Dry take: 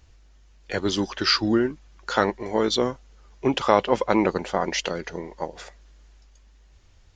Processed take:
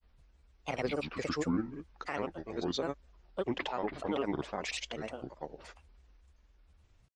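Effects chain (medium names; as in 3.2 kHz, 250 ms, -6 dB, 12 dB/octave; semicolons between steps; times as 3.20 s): treble shelf 4.5 kHz -9 dB; peak limiter -14 dBFS, peak gain reduction 11 dB; granulator, grains 20 per s, pitch spread up and down by 7 st; trim -7.5 dB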